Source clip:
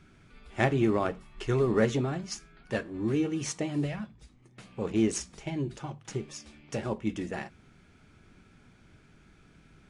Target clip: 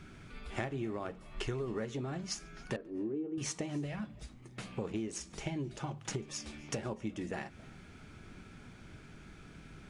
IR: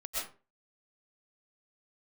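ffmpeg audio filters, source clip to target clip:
-filter_complex "[0:a]asettb=1/sr,asplit=3[a][b][c];[a]atrim=end=2.764[d];[b]atrim=start=2.76:end=3.38,asetpts=PTS-STARTPTS,afade=t=in:d=0.004:c=qsin,afade=t=out:st=0.616:d=0.004:c=qsin,bandpass=f=380:t=q:w=1.6:csg=0[e];[c]atrim=start=3.376[f];[d][e]acrossfade=d=0.004:c1=hsin:c2=qsin[g];[g][f]acrossfade=d=0.004:c1=qsin:c2=hsin,acompressor=threshold=-40dB:ratio=10,asplit=2[h][i];[1:a]atrim=start_sample=2205,adelay=142[j];[i][j]afir=irnorm=-1:irlink=0,volume=-25dB[k];[h][k]amix=inputs=2:normalize=0,volume=5.5dB"

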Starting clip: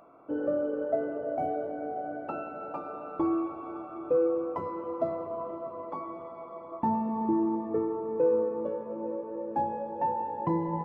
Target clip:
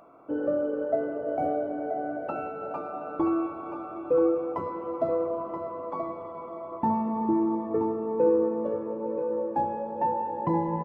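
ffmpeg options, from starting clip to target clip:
-af "aecho=1:1:978:0.422,volume=2dB"

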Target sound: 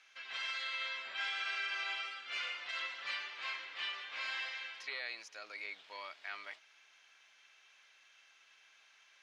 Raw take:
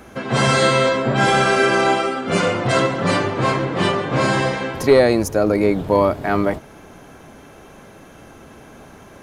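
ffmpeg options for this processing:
-filter_complex "[0:a]asuperpass=centerf=3600:order=4:qfactor=1,highshelf=f=4.3k:g=-5,alimiter=limit=-20dB:level=0:latency=1:release=93,acrossover=split=3700[a][b];[b]acompressor=threshold=-46dB:ratio=4:attack=1:release=60[c];[a][c]amix=inputs=2:normalize=0,volume=-7.5dB"

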